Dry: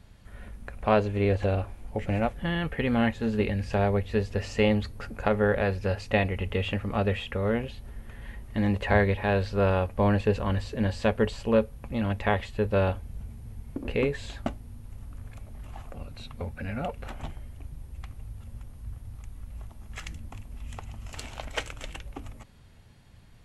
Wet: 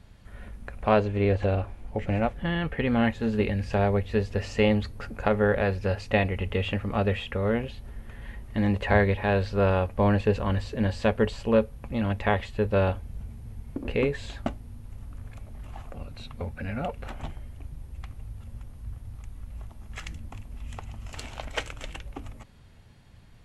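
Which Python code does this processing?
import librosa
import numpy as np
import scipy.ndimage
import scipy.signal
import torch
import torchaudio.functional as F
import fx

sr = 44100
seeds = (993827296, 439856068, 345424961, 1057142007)

y = fx.high_shelf(x, sr, hz=7700.0, db=fx.steps((0.0, -4.5), (1.0, -11.0), (3.03, -4.5)))
y = y * 10.0 ** (1.0 / 20.0)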